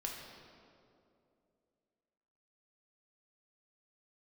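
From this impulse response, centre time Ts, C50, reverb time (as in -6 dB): 83 ms, 2.0 dB, 2.6 s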